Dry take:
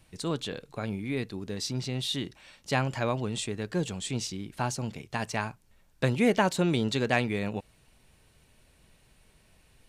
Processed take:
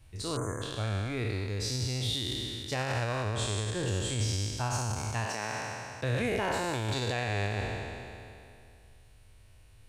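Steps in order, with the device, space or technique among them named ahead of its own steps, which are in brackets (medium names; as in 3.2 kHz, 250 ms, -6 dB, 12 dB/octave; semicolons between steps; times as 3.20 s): spectral sustain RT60 2.53 s; 5.24–6.28 s: high-pass 200 Hz -> 58 Hz 24 dB/octave; car stereo with a boomy subwoofer (resonant low shelf 130 Hz +6.5 dB, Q 3; peak limiter -16 dBFS, peak gain reduction 9 dB); 0.36–0.62 s: spectral selection erased 2.2–6 kHz; trim -5 dB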